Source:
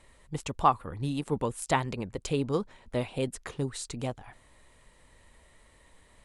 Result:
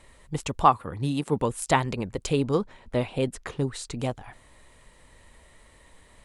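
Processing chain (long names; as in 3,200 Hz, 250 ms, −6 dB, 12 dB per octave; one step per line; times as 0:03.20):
0:00.66–0:01.41: high-pass filter 76 Hz
0:02.54–0:03.96: high-shelf EQ 5,500 Hz −6.5 dB
level +4.5 dB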